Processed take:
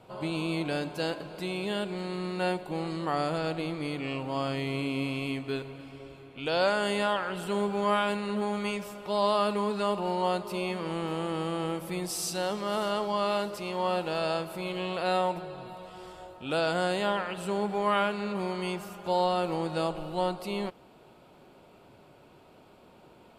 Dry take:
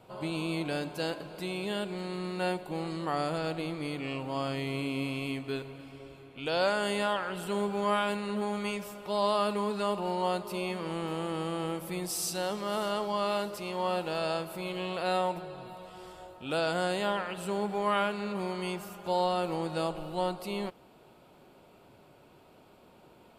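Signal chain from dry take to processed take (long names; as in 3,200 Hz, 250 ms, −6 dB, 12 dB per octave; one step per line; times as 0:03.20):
high-shelf EQ 12,000 Hz −8.5 dB
level +2 dB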